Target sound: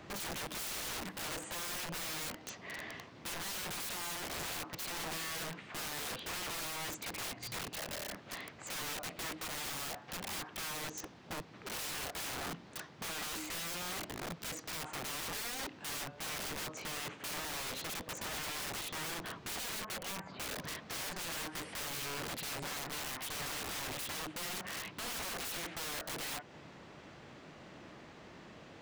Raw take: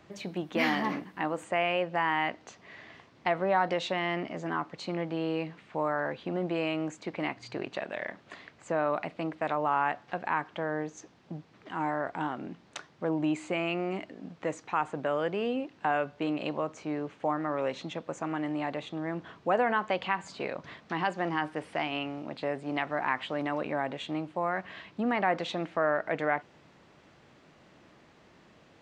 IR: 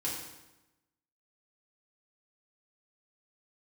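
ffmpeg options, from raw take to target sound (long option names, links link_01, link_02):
-filter_complex "[0:a]alimiter=limit=-24dB:level=0:latency=1:release=211,asettb=1/sr,asplit=3[link_01][link_02][link_03];[link_01]atrim=end=19.754[link_04];[link_02]atrim=start=19.75:end=20.42,asetpts=PTS-STARTPTS,afade=type=in:duration=0.004:curve=qsin,afade=type=out:start_time=0.666:duration=0.004:curve=qsin,lowpass=1800[link_05];[link_03]atrim=start=20.416[link_06];[link_04][link_05]acrossfade=duration=0.004:curve1=hsin:curve2=qsin[link_07];[link_07][link_06]acrossfade=duration=0.004:curve1=qsin:curve2=hsin,aeval=exprs='(mod(106*val(0)+1,2)-1)/106':channel_layout=same,volume=5dB"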